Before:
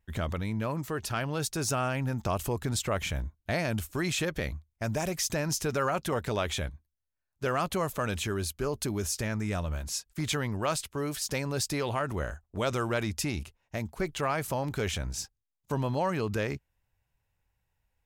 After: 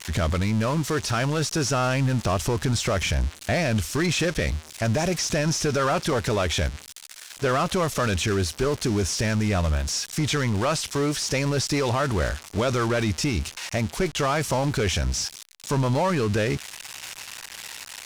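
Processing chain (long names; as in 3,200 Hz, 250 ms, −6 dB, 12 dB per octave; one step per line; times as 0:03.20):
spike at every zero crossing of −24.5 dBFS
dynamic equaliser 5,600 Hz, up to +6 dB, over −48 dBFS, Q 5.1
leveller curve on the samples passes 2
brickwall limiter −22 dBFS, peak gain reduction 7.5 dB
high-frequency loss of the air 82 metres
level +6 dB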